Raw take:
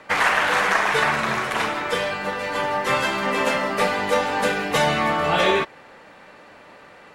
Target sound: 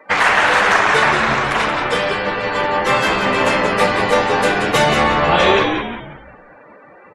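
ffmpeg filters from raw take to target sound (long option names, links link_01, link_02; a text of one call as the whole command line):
ffmpeg -i in.wav -filter_complex "[0:a]asplit=6[link_01][link_02][link_03][link_04][link_05][link_06];[link_02]adelay=179,afreqshift=-82,volume=-5.5dB[link_07];[link_03]adelay=358,afreqshift=-164,volume=-13.2dB[link_08];[link_04]adelay=537,afreqshift=-246,volume=-21dB[link_09];[link_05]adelay=716,afreqshift=-328,volume=-28.7dB[link_10];[link_06]adelay=895,afreqshift=-410,volume=-36.5dB[link_11];[link_01][link_07][link_08][link_09][link_10][link_11]amix=inputs=6:normalize=0,afftdn=noise_reduction=26:noise_floor=-43,volume=5dB" out.wav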